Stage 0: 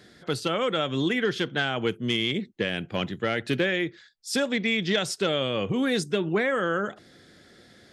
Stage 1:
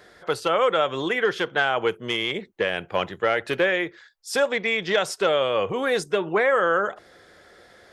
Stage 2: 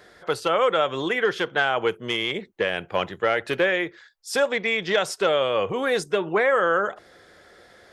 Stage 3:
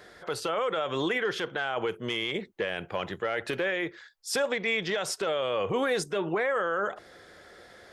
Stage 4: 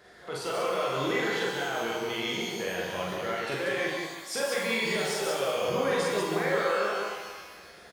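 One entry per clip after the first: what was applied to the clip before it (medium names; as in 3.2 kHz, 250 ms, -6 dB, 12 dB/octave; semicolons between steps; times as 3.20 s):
graphic EQ 125/250/500/1000/4000/8000 Hz -9/-11/+4/+6/-5/-3 dB; trim +3.5 dB
no audible change
peak limiter -19.5 dBFS, peak gain reduction 11 dB
loudspeakers at several distances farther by 15 m -1 dB, 64 m -3 dB; pitch-shifted reverb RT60 1.3 s, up +12 st, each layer -8 dB, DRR 0.5 dB; trim -6.5 dB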